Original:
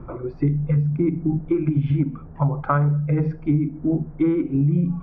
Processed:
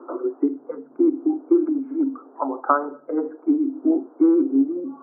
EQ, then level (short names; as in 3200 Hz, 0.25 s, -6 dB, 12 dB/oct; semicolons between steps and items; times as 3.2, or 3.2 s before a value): rippled Chebyshev high-pass 260 Hz, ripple 3 dB; Chebyshev low-pass 1400 Hz, order 4; air absorption 370 m; +6.5 dB